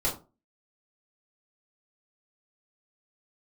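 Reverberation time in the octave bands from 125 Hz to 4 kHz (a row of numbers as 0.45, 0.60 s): 0.35, 0.35, 0.35, 0.30, 0.20, 0.20 s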